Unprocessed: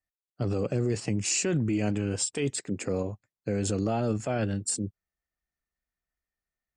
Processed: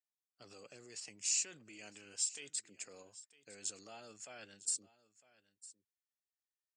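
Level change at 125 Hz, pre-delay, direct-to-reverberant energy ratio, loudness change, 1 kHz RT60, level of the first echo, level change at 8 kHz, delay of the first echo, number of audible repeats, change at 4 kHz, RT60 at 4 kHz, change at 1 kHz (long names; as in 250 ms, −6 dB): −38.0 dB, no reverb audible, no reverb audible, −10.0 dB, no reverb audible, −18.5 dB, −5.5 dB, 955 ms, 1, −7.0 dB, no reverb audible, −21.0 dB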